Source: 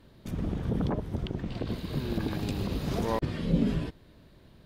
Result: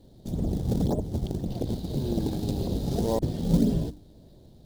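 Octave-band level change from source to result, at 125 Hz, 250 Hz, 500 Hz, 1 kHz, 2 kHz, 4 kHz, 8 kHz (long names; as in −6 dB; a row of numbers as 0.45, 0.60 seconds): +3.5 dB, +3.5 dB, +3.5 dB, −1.0 dB, below −10 dB, 0.0 dB, +6.0 dB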